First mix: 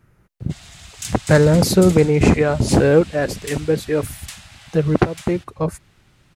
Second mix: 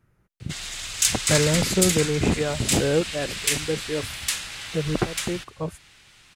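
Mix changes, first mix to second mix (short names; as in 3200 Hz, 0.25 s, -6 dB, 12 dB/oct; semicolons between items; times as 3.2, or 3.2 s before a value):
speech -8.5 dB; background: remove ladder high-pass 590 Hz, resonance 55%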